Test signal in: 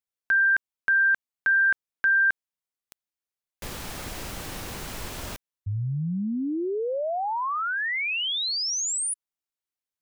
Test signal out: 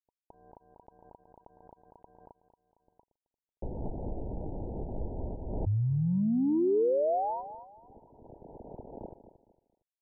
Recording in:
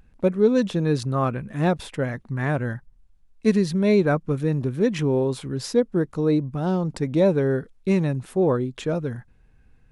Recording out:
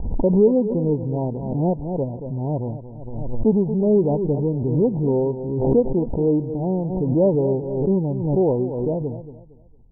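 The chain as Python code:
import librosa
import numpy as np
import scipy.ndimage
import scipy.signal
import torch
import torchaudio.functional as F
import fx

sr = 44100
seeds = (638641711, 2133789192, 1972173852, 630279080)

p1 = scipy.signal.medfilt(x, 41)
p2 = scipy.signal.sosfilt(scipy.signal.cheby1(10, 1.0, 970.0, 'lowpass', fs=sr, output='sos'), p1)
p3 = fx.peak_eq(p2, sr, hz=150.0, db=-4.5, octaves=1.6)
p4 = p3 + fx.echo_feedback(p3, sr, ms=229, feedback_pct=29, wet_db=-12.5, dry=0)
p5 = fx.pre_swell(p4, sr, db_per_s=43.0)
y = p5 * 10.0 ** (4.0 / 20.0)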